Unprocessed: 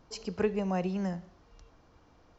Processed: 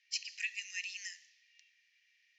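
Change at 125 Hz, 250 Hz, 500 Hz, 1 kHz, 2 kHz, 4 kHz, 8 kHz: below −40 dB, below −40 dB, below −40 dB, below −40 dB, +5.5 dB, +6.5 dB, can't be measured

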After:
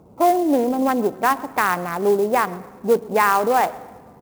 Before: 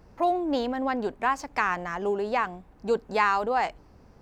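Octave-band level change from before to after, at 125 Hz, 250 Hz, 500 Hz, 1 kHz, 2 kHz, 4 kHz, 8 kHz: +8.5, +9.0, +8.5, +7.0, +4.5, +4.0, +14.5 decibels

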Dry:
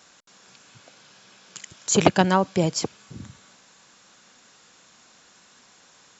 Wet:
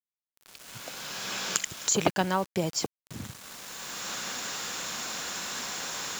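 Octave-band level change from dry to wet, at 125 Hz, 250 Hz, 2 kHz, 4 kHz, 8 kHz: −8.5 dB, −8.5 dB, −1.0 dB, +1.5 dB, can't be measured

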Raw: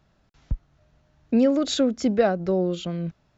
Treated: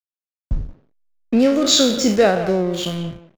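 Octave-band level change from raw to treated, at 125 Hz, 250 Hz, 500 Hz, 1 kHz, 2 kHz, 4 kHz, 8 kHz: +4.0 dB, +4.0 dB, +5.5 dB, +6.5 dB, +9.5 dB, +13.5 dB, can't be measured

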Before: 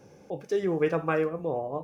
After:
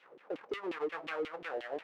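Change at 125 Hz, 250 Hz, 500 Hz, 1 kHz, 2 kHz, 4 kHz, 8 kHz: −27.5 dB, −12.5 dB, −11.0 dB, −9.0 dB, −5.0 dB, +0.5 dB, can't be measured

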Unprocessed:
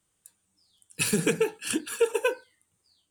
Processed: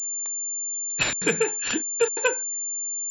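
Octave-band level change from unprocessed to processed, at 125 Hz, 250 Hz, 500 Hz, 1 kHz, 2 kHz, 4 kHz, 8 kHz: −4.5, −2.5, +0.5, +4.0, +5.5, +4.0, +12.0 decibels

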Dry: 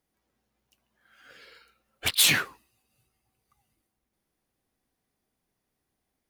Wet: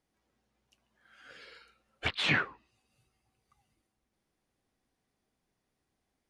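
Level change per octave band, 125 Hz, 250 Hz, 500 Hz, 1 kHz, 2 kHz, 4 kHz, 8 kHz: 0.0, 0.0, 0.0, −0.5, −3.0, −10.0, −26.0 decibels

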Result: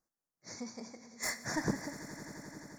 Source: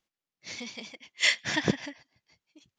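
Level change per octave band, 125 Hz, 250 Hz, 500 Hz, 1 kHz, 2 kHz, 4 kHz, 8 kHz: −5.0, −4.5, −5.5, −2.5, −12.0, −15.5, −3.5 decibels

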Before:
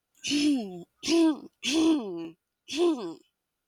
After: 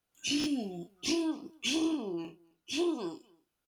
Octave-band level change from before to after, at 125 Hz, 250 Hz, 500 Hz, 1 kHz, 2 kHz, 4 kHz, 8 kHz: −1.0, −7.0, −6.5, −6.0, −3.5, −3.0, −2.5 decibels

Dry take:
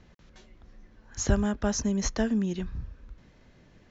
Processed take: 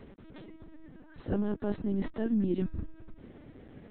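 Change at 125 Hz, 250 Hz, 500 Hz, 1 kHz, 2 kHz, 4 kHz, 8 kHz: −4.5 dB, −2.5 dB, −2.5 dB, −8.5 dB, −10.5 dB, below −15 dB, can't be measured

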